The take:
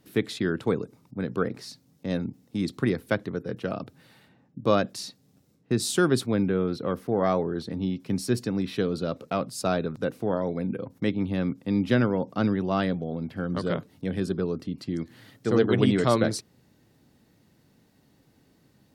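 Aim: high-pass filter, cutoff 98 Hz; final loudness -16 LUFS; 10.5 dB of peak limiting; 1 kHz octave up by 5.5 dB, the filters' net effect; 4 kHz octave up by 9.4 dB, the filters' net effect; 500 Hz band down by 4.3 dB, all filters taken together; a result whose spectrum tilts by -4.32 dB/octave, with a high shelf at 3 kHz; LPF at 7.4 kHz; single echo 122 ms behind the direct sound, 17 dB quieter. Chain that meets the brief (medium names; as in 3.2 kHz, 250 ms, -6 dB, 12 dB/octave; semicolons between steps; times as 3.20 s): high-pass 98 Hz; low-pass 7.4 kHz; peaking EQ 500 Hz -8 dB; peaking EQ 1 kHz +8 dB; treble shelf 3 kHz +9 dB; peaking EQ 4 kHz +4.5 dB; peak limiter -16 dBFS; delay 122 ms -17 dB; trim +13.5 dB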